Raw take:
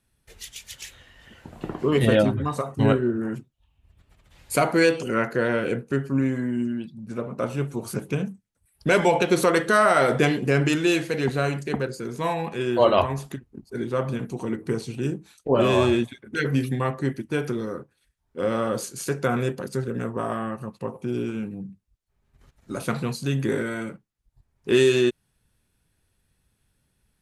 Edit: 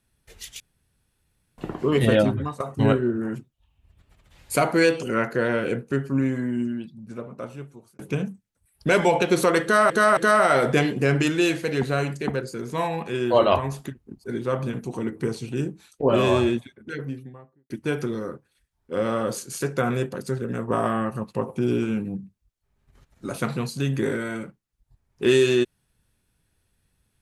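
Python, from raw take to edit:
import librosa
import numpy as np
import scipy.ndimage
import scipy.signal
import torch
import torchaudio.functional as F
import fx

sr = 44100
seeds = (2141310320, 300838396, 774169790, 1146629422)

y = fx.studio_fade_out(x, sr, start_s=15.65, length_s=1.51)
y = fx.edit(y, sr, fx.room_tone_fill(start_s=0.6, length_s=0.98),
    fx.fade_out_to(start_s=2.32, length_s=0.28, curve='qsin', floor_db=-16.5),
    fx.fade_out_span(start_s=6.61, length_s=1.38),
    fx.repeat(start_s=9.63, length_s=0.27, count=3),
    fx.clip_gain(start_s=20.14, length_s=1.49, db=4.5), tone=tone)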